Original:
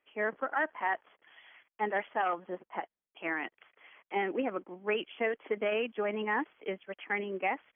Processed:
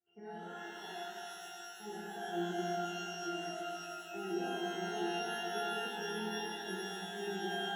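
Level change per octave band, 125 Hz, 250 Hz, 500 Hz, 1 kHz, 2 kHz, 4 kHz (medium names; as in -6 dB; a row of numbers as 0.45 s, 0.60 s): +4.0 dB, -1.5 dB, -6.5 dB, -5.5 dB, -8.0 dB, no reading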